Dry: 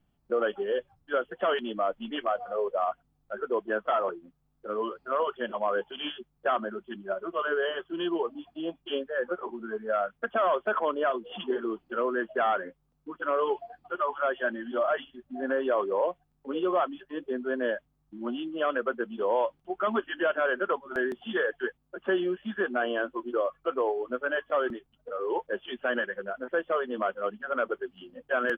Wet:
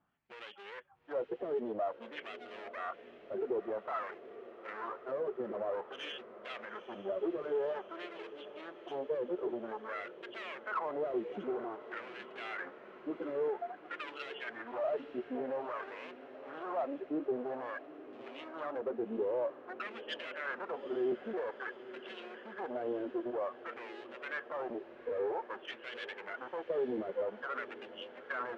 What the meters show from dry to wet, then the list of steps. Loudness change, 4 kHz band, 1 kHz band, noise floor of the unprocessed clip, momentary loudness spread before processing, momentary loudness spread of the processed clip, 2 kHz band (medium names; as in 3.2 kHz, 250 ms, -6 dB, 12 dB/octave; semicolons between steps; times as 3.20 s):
-9.0 dB, no reading, -11.0 dB, -73 dBFS, 9 LU, 12 LU, -11.0 dB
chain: bass shelf 500 Hz +10.5 dB; in parallel at -1 dB: compression, threshold -32 dBFS, peak gain reduction 15 dB; on the sum: peak limiter -20 dBFS, peak gain reduction 10.5 dB; one-sided clip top -36 dBFS, bottom -23 dBFS; LFO band-pass sine 0.51 Hz 370–3000 Hz; echo that smears into a reverb 866 ms, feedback 71%, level -15 dB